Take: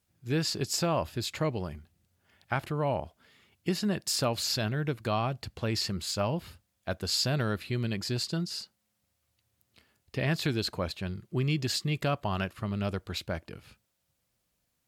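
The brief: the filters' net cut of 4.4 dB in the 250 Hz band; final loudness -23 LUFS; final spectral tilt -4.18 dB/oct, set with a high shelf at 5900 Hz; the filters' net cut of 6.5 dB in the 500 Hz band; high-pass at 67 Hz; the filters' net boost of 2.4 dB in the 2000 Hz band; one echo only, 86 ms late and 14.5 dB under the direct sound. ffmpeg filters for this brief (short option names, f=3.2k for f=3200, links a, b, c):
-af "highpass=67,equalizer=f=250:t=o:g=-5,equalizer=f=500:t=o:g=-7.5,equalizer=f=2k:t=o:g=4.5,highshelf=f=5.9k:g=-6,aecho=1:1:86:0.188,volume=10.5dB"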